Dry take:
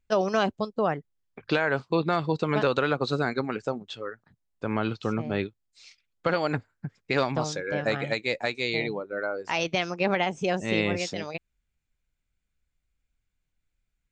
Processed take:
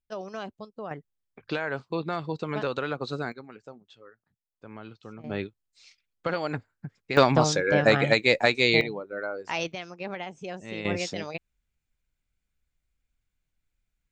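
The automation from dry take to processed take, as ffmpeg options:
-af "asetnsamples=n=441:p=0,asendcmd='0.91 volume volume -5.5dB;3.32 volume volume -15.5dB;5.24 volume volume -3.5dB;7.17 volume volume 7dB;8.81 volume volume -2.5dB;9.72 volume volume -10.5dB;10.85 volume volume -0.5dB',volume=-12.5dB"

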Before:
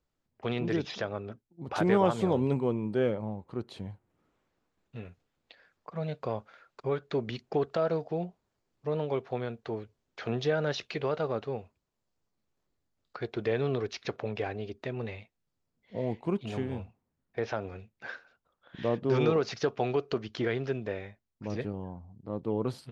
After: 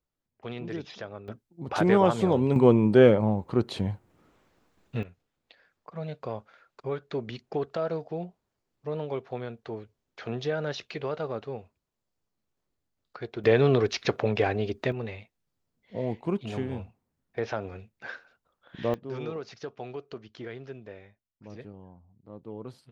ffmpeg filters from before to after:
-af "asetnsamples=n=441:p=0,asendcmd='1.28 volume volume 3.5dB;2.56 volume volume 11dB;5.03 volume volume -1.5dB;13.44 volume volume 8.5dB;14.92 volume volume 1.5dB;18.94 volume volume -9.5dB',volume=-5.5dB"

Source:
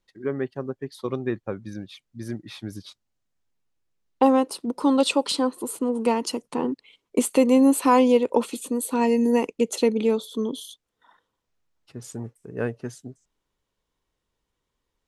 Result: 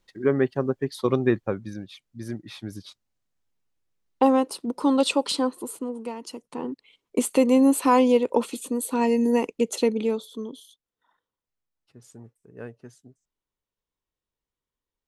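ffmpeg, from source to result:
-af "volume=18dB,afade=t=out:st=1.28:d=0.49:silence=0.446684,afade=t=out:st=5.44:d=0.68:silence=0.251189,afade=t=in:st=6.12:d=1.22:silence=0.251189,afade=t=out:st=9.8:d=0.85:silence=0.298538"

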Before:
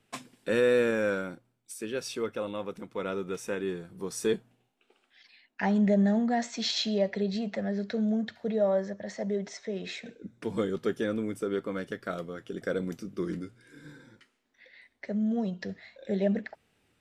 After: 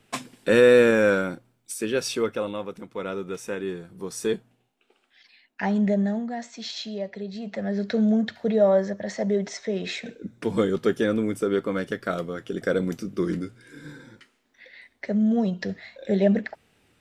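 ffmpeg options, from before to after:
-af "volume=20dB,afade=t=out:st=2.06:d=0.64:silence=0.473151,afade=t=out:st=5.86:d=0.45:silence=0.473151,afade=t=in:st=7.35:d=0.6:silence=0.266073"

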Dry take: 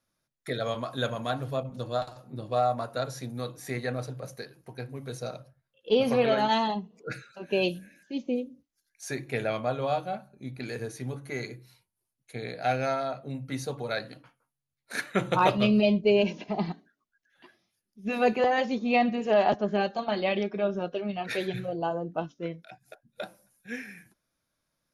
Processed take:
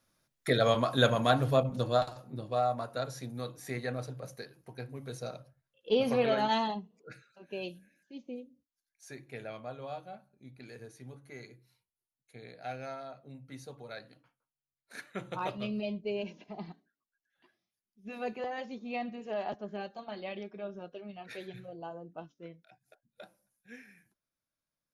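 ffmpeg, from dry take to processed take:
-af "volume=5dB,afade=t=out:st=1.61:d=0.89:silence=0.354813,afade=t=out:st=6.61:d=0.47:silence=0.354813"

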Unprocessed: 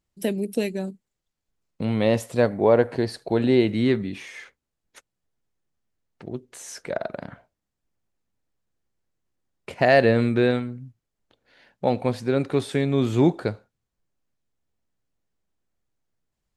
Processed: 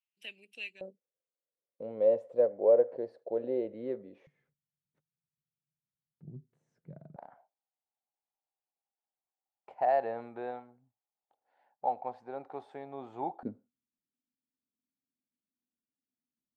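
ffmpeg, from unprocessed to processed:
-af "asetnsamples=n=441:p=0,asendcmd='0.81 bandpass f 530;4.27 bandpass f 150;7.16 bandpass f 800;13.43 bandpass f 250',bandpass=f=2.7k:t=q:w=7.2:csg=0"

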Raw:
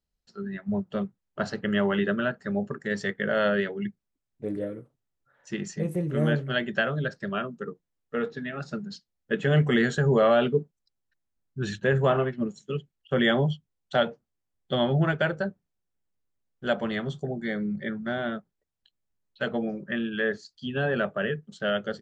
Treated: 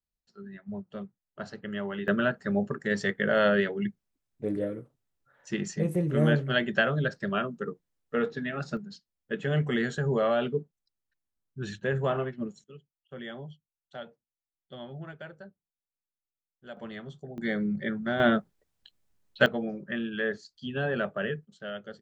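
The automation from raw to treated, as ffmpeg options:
-af "asetnsamples=n=441:p=0,asendcmd='2.08 volume volume 1dB;8.77 volume volume -5.5dB;12.64 volume volume -18dB;16.77 volume volume -11dB;17.38 volume volume 0.5dB;18.2 volume volume 8.5dB;19.46 volume volume -3dB;21.45 volume volume -11dB',volume=-9.5dB"

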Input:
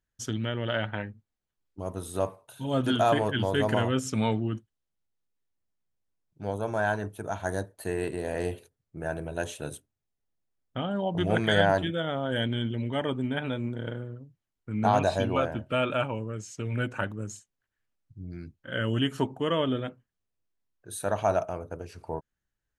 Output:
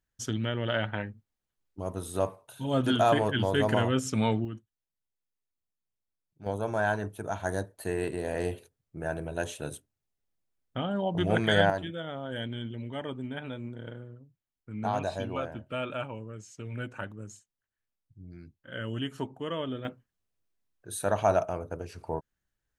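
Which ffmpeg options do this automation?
-af "asetnsamples=n=441:p=0,asendcmd='4.45 volume volume -7.5dB;6.46 volume volume -0.5dB;11.7 volume volume -7dB;19.85 volume volume 1dB',volume=0dB"

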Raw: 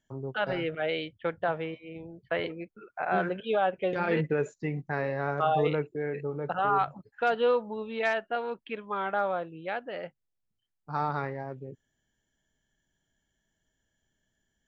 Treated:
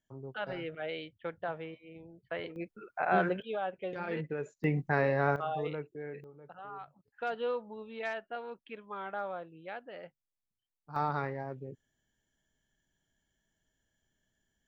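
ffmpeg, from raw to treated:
-af "asetnsamples=n=441:p=0,asendcmd='2.56 volume volume 0dB;3.42 volume volume -9dB;4.64 volume volume 2.5dB;5.36 volume volume -9.5dB;6.24 volume volume -19.5dB;7.08 volume volume -9dB;10.96 volume volume -2dB',volume=-8dB"

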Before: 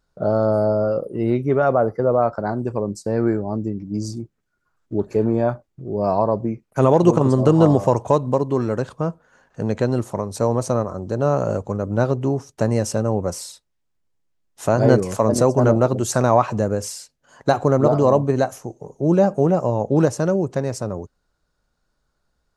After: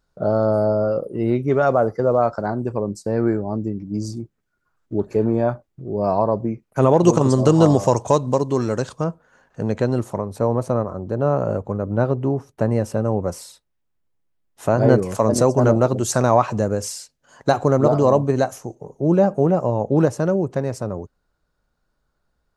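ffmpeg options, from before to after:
-af "asetnsamples=n=441:p=0,asendcmd='1.48 equalizer g 9;2.46 equalizer g -2;7.04 equalizer g 10;9.04 equalizer g -2;10.18 equalizer g -13;13.02 equalizer g -6.5;15.15 equalizer g 1.5;18.75 equalizer g -5.5',equalizer=f=6.3k:t=o:w=1.7:g=-0.5"

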